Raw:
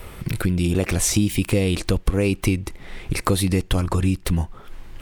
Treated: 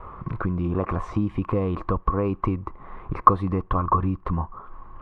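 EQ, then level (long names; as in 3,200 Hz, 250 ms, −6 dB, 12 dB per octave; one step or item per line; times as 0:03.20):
low-pass with resonance 1,100 Hz, resonance Q 11
−5.0 dB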